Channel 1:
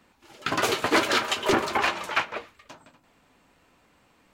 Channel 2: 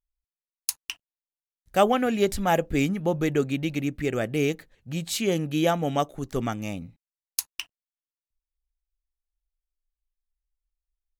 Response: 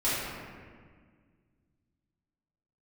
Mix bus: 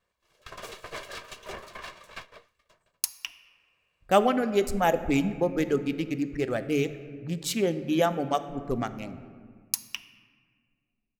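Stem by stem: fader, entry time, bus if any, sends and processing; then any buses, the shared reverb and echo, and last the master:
-15.5 dB, 0.00 s, no send, minimum comb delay 1.8 ms
-1.0 dB, 2.35 s, send -21.5 dB, Wiener smoothing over 15 samples; notches 50/100/150 Hz; reverb removal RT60 1.5 s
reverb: on, RT60 1.7 s, pre-delay 3 ms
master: dry

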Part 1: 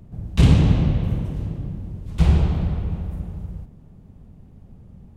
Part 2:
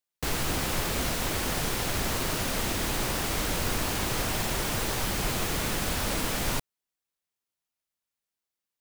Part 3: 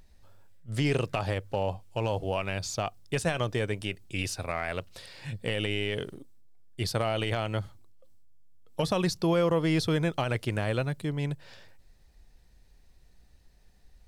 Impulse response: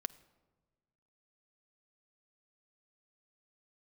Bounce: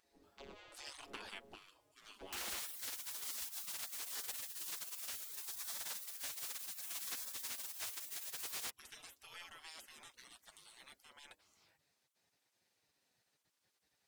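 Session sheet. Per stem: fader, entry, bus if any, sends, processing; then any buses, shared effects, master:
-6.0 dB, 0.00 s, bus A, no send, arpeggiated vocoder bare fifth, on C#3, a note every 0.523 s
-2.0 dB, 2.10 s, bus A, no send, dry
-3.5 dB, 0.00 s, no bus, no send, low shelf 460 Hz -9 dB
bus A: 0.0 dB, limiter -22.5 dBFS, peak gain reduction 10.5 dB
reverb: off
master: flange 0.95 Hz, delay 5.4 ms, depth 2.7 ms, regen +16%; spectral gate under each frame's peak -25 dB weak

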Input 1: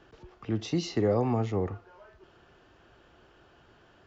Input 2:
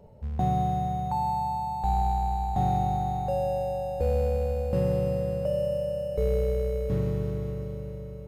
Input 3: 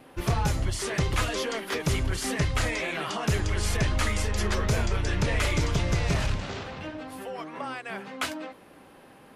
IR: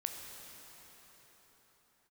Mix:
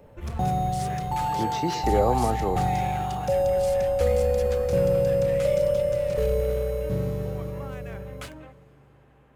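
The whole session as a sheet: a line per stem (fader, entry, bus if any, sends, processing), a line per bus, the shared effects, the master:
-3.5 dB, 0.90 s, no send, bell 870 Hz +10 dB 2.6 oct
-2.5 dB, 0.00 s, send -8.5 dB, bell 530 Hz +8 dB 0.2 oct
-9.0 dB, 0.00 s, send -19 dB, Wiener smoothing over 9 samples; limiter -21.5 dBFS, peak gain reduction 5 dB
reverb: on, pre-delay 13 ms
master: high shelf 5000 Hz +8.5 dB

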